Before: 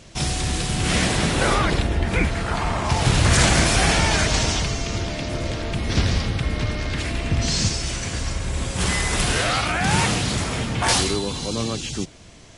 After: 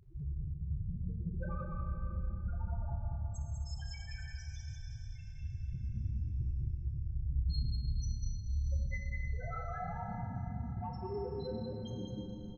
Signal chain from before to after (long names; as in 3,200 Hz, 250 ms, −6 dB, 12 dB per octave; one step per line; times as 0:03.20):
0:02.97–0:05.43: guitar amp tone stack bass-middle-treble 5-5-5
mains-hum notches 50/100/150/200/250/300/350 Hz
downward compressor 5 to 1, threshold −33 dBFS, peak gain reduction 16 dB
dead-zone distortion −52.5 dBFS
pitch vibrato 14 Hz 12 cents
spectral peaks only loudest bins 2
soft clipping −32.5 dBFS, distortion −24 dB
double-tracking delay 29 ms −13 dB
single-tap delay 197 ms −4 dB
four-comb reverb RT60 3.9 s, combs from 29 ms, DRR 1 dB
level +1.5 dB